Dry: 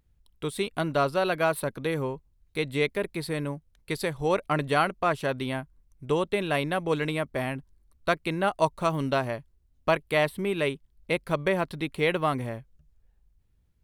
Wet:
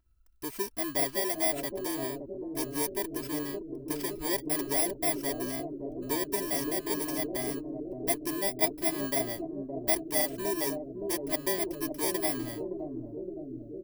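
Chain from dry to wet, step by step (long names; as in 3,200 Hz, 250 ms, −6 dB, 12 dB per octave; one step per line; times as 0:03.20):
samples in bit-reversed order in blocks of 32 samples
comb filter 3 ms, depth 92%
bucket-brigade delay 566 ms, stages 2,048, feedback 77%, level −3 dB
level −7.5 dB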